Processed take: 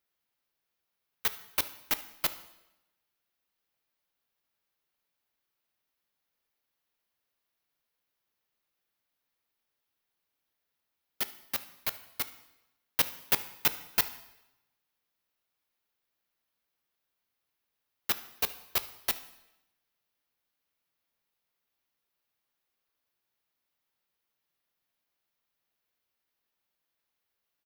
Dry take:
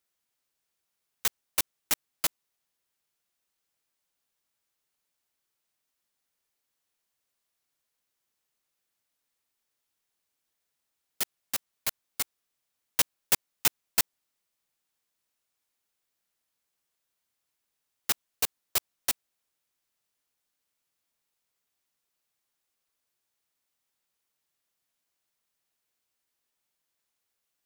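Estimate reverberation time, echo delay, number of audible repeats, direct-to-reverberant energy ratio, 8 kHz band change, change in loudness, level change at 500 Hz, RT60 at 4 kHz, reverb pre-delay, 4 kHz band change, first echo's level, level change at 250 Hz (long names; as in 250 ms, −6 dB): 0.95 s, 75 ms, 1, 11.5 dB, −7.5 dB, −2.0 dB, +0.5 dB, 0.85 s, 6 ms, −2.0 dB, −21.5 dB, 0.0 dB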